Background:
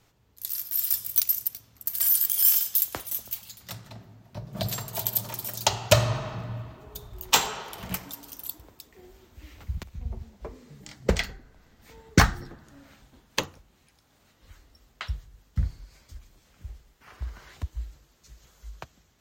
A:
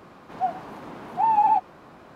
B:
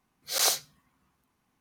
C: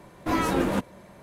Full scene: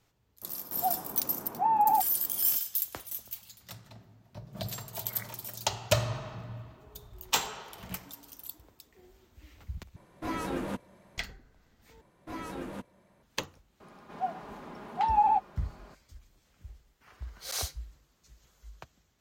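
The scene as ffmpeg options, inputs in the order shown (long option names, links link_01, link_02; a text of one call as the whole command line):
ffmpeg -i bed.wav -i cue0.wav -i cue1.wav -i cue2.wav -filter_complex "[1:a]asplit=2[link_01][link_02];[2:a]asplit=2[link_03][link_04];[3:a]asplit=2[link_05][link_06];[0:a]volume=-7dB[link_07];[link_01]lowpass=frequency=1300:poles=1[link_08];[link_03]lowpass=frequency=2300:width_type=q:width=0.5098,lowpass=frequency=2300:width_type=q:width=0.6013,lowpass=frequency=2300:width_type=q:width=0.9,lowpass=frequency=2300:width_type=q:width=2.563,afreqshift=-2700[link_09];[link_02]aecho=1:1:4.9:0.35[link_10];[link_07]asplit=3[link_11][link_12][link_13];[link_11]atrim=end=9.964[link_14];[link_05]atrim=end=1.22,asetpts=PTS-STARTPTS,volume=-9.5dB[link_15];[link_12]atrim=start=11.176:end=12.014[link_16];[link_06]atrim=end=1.22,asetpts=PTS-STARTPTS,volume=-15dB[link_17];[link_13]atrim=start=13.226[link_18];[link_08]atrim=end=2.15,asetpts=PTS-STARTPTS,volume=-3.5dB,afade=type=in:duration=0.004:curve=hsin,afade=type=out:start_time=2.146:duration=0.004:curve=hsin,adelay=420[link_19];[link_09]atrim=end=1.6,asetpts=PTS-STARTPTS,volume=-15.5dB,afade=type=in:duration=0.004:curve=hsin,afade=type=out:start_time=1.596:duration=0.004:curve=hsin,adelay=4740[link_20];[link_10]atrim=end=2.15,asetpts=PTS-STARTPTS,volume=-6dB,afade=type=in:duration=0.004:curve=hsin,afade=type=out:start_time=2.146:duration=0.004:curve=hsin,adelay=608580S[link_21];[link_04]atrim=end=1.6,asetpts=PTS-STARTPTS,volume=-10dB,afade=type=in:duration=0.004:curve=hsin,afade=type=out:start_time=1.596:duration=0.004:curve=hsin,adelay=17130[link_22];[link_14][link_15]acrossfade=duration=0.004:curve1=hsin:curve2=hsin[link_23];[link_23][link_16]acrossfade=duration=0.004:curve1=hsin:curve2=hsin[link_24];[link_24][link_17]acrossfade=duration=0.004:curve1=hsin:curve2=hsin[link_25];[link_25][link_18]acrossfade=duration=0.004:curve1=hsin:curve2=hsin[link_26];[link_26][link_19][link_20][link_21][link_22]amix=inputs=5:normalize=0" out.wav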